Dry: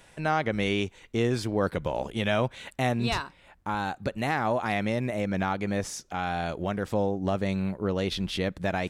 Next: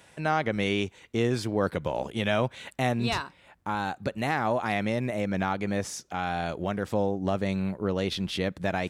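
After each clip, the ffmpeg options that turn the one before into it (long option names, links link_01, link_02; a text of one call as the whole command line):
ffmpeg -i in.wav -af "highpass=71" out.wav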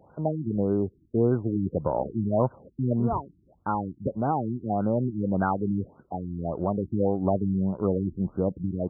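ffmpeg -i in.wav -af "afftfilt=real='re*lt(b*sr/1024,350*pow(1600/350,0.5+0.5*sin(2*PI*1.7*pts/sr)))':imag='im*lt(b*sr/1024,350*pow(1600/350,0.5+0.5*sin(2*PI*1.7*pts/sr)))':win_size=1024:overlap=0.75,volume=3.5dB" out.wav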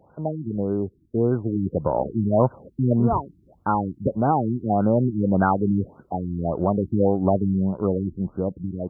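ffmpeg -i in.wav -af "dynaudnorm=framelen=500:gausssize=7:maxgain=6dB" out.wav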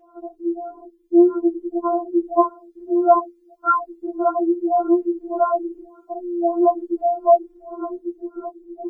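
ffmpeg -i in.wav -af "afftfilt=real='re*4*eq(mod(b,16),0)':imag='im*4*eq(mod(b,16),0)':win_size=2048:overlap=0.75,volume=7.5dB" out.wav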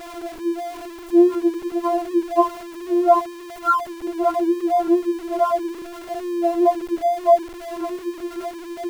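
ffmpeg -i in.wav -af "aeval=exprs='val(0)+0.5*0.0299*sgn(val(0))':channel_layout=same,volume=-1dB" out.wav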